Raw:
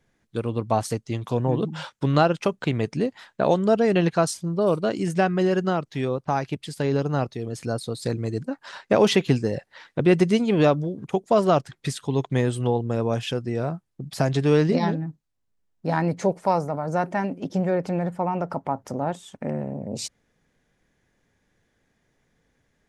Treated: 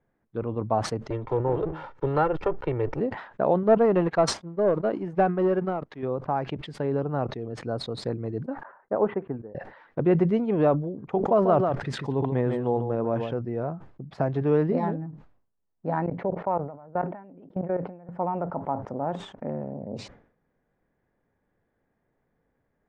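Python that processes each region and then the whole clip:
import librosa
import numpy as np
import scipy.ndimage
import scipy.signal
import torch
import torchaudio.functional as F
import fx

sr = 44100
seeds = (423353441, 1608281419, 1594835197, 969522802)

y = fx.chain(x, sr, fx.lower_of_two(delay_ms=2.2),
    fx.band_squash(depth_pct=40), at=(1.1, 3.0))
y = fx.chain(y, sr, fx.peak_eq(hz=110.0, db=-8.0, octaves=0.73),
    fx.leveller(passes=2),
    fx.upward_expand(threshold_db=-26.0, expansion=2.5), at=(3.63, 6.03))
y = fx.chain(y, sr, fx.lowpass(hz=1600.0, slope=24),
    fx.low_shelf(hz=150.0, db=-8.5),
    fx.upward_expand(threshold_db=-34.0, expansion=2.5), at=(8.63, 9.55))
y = fx.chain(y, sr, fx.echo_single(ms=143, db=-8.5),
    fx.sustainer(db_per_s=37.0), at=(11.11, 13.34))
y = fx.chain(y, sr, fx.lowpass(hz=3700.0, slope=24),
    fx.level_steps(step_db=22), at=(16.06, 18.09))
y = scipy.signal.sosfilt(scipy.signal.butter(2, 1100.0, 'lowpass', fs=sr, output='sos'), y)
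y = fx.low_shelf(y, sr, hz=350.0, db=-6.5)
y = fx.sustainer(y, sr, db_per_s=100.0)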